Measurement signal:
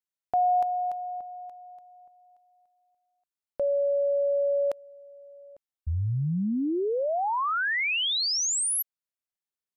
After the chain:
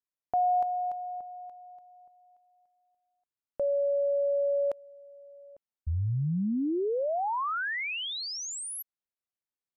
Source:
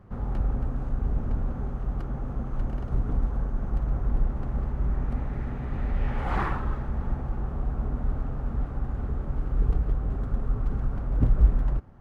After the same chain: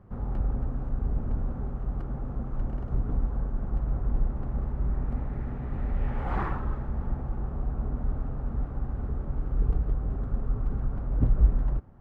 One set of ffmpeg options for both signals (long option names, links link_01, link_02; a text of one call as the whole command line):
ffmpeg -i in.wav -af "highshelf=frequency=2200:gain=-9.5,volume=-1.5dB" out.wav